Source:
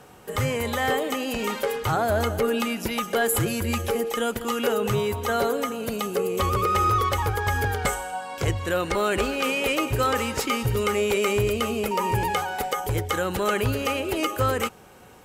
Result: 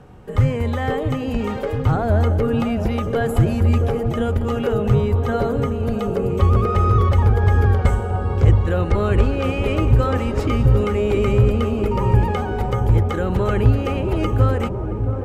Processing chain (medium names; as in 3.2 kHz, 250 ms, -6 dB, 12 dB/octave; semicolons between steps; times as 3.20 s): RIAA curve playback; on a send: feedback echo behind a low-pass 673 ms, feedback 77%, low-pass 930 Hz, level -8 dB; on the sum: trim -1 dB